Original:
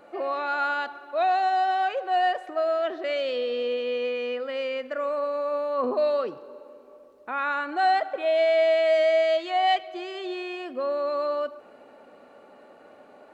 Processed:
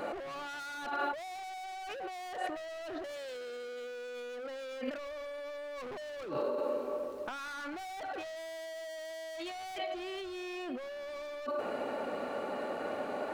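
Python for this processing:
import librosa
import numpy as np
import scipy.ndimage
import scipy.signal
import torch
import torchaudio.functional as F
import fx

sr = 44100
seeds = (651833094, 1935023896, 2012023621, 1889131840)

y = np.clip(10.0 ** (33.5 / 20.0) * x, -1.0, 1.0) / 10.0 ** (33.5 / 20.0)
y = fx.over_compress(y, sr, threshold_db=-45.0, ratio=-1.0)
y = F.gain(torch.from_numpy(y), 5.0).numpy()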